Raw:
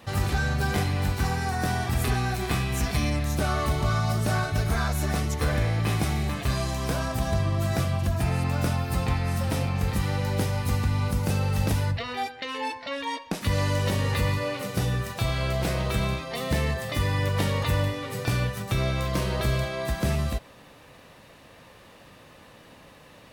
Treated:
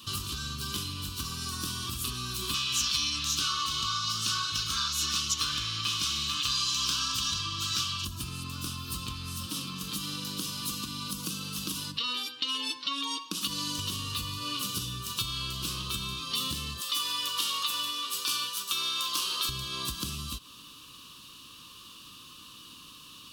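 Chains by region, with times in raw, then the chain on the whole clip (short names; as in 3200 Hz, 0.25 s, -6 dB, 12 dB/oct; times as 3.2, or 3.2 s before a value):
2.54–8.05 band shelf 2900 Hz +12.5 dB 2.9 oct + flange 1 Hz, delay 6.2 ms, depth 4.7 ms, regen -74%
9.46–13.79 comb 6.3 ms, depth 37% + compressor 2:1, threshold -28 dBFS + resonant low shelf 140 Hz -10 dB, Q 1.5
16.81–19.49 HPF 570 Hz + feedback echo 0.142 s, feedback 51%, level -18 dB
whole clip: EQ curve 310 Hz 0 dB, 750 Hz -30 dB, 1100 Hz +5 dB, 2000 Hz -18 dB, 2900 Hz +8 dB, 4100 Hz +4 dB, 7400 Hz -2 dB; compressor, threshold -30 dBFS; tone controls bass -7 dB, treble +11 dB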